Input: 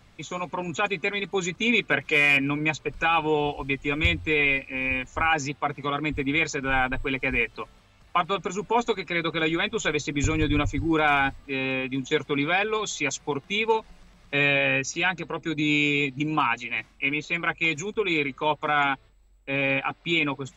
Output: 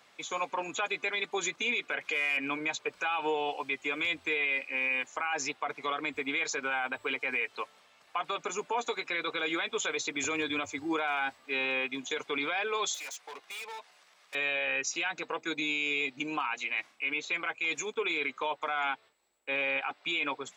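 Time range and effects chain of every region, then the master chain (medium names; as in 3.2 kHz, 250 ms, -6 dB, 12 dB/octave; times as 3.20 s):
12.94–14.35 s: high-pass 810 Hz 6 dB/octave + compression 2:1, threshold -33 dBFS + hard clipper -39 dBFS
whole clip: high-pass 490 Hz 12 dB/octave; peak limiter -22 dBFS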